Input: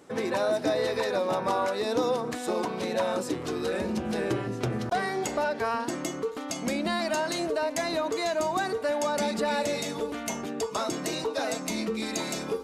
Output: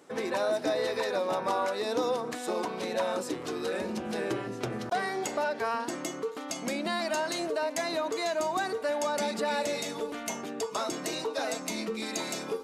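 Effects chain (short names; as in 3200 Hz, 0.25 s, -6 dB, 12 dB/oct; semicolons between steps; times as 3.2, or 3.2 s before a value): HPF 250 Hz 6 dB/oct; gain -1.5 dB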